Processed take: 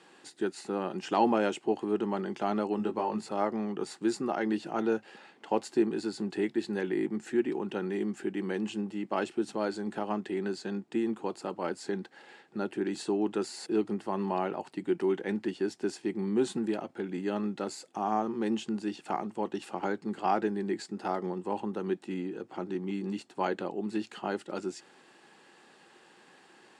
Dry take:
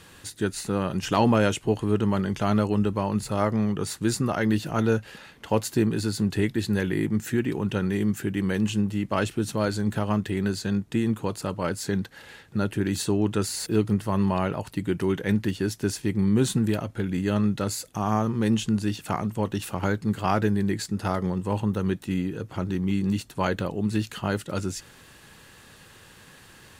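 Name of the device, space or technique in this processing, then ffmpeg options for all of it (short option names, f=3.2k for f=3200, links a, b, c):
television speaker: -filter_complex "[0:a]highpass=f=200:w=0.5412,highpass=f=200:w=1.3066,equalizer=f=360:t=q:w=4:g=8,equalizer=f=790:t=q:w=4:g=9,equalizer=f=3.7k:t=q:w=4:g=-3,equalizer=f=6.2k:t=q:w=4:g=-6,lowpass=f=8k:w=0.5412,lowpass=f=8k:w=1.3066,asettb=1/sr,asplit=3[a][b][c];[a]atrim=end=2.774[d];[b]atrim=start=2.77:end=3.29,asetpts=PTS-STARTPTS,afade=t=in:d=0.004:c=qsin,afade=t=out:st=0.516:d=0.004:c=qsin,asplit=2[e][f];[f]adelay=18,volume=-4.5dB[g];[e][g]amix=inputs=2:normalize=0,atrim=end_sample=22932[h];[c]atrim=start=3.286[i];[d][h]acrossfade=d=0.004:c1=hsin:c2=qsin[j];[j][i]acrossfade=d=0.004:c1=qsin:c2=hsin,volume=-7.5dB"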